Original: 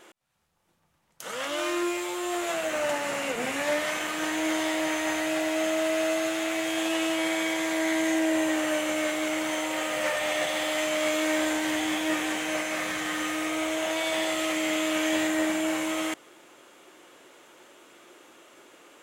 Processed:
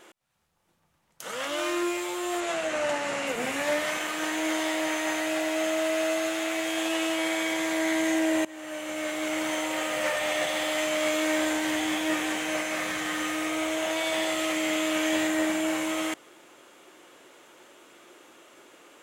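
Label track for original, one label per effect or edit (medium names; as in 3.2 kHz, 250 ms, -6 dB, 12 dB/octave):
2.400000	3.270000	low-pass 8.6 kHz
3.980000	7.520000	bass shelf 110 Hz -11.5 dB
8.450000	9.420000	fade in, from -22 dB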